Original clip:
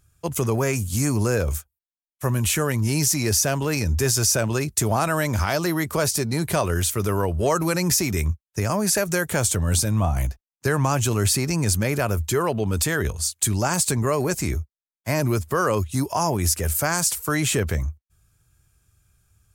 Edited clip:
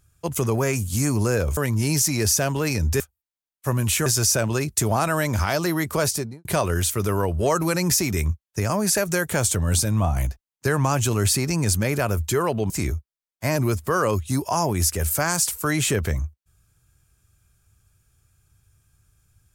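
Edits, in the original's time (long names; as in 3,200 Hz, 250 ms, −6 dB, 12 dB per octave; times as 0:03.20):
0:01.57–0:02.63: move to 0:04.06
0:06.08–0:06.45: fade out and dull
0:12.70–0:14.34: remove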